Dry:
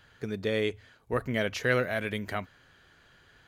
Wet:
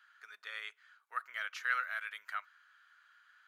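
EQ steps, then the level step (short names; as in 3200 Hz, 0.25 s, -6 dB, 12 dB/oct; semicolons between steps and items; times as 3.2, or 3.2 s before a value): ladder high-pass 1200 Hz, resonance 65%; 0.0 dB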